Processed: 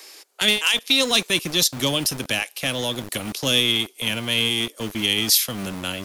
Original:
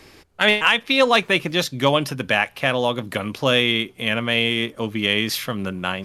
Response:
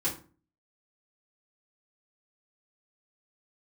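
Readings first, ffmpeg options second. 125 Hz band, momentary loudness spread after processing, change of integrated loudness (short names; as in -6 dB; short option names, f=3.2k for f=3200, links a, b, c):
-3.0 dB, 9 LU, -0.5 dB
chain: -filter_complex "[0:a]bass=f=250:g=-6,treble=f=4k:g=11,acrossover=split=350|3000[a][b][c];[b]acompressor=threshold=-57dB:ratio=1.5[d];[a][d][c]amix=inputs=3:normalize=0,acrossover=split=360|5700[e][f][g];[e]acrusher=bits=5:mix=0:aa=0.000001[h];[h][f][g]amix=inputs=3:normalize=0,volume=2dB"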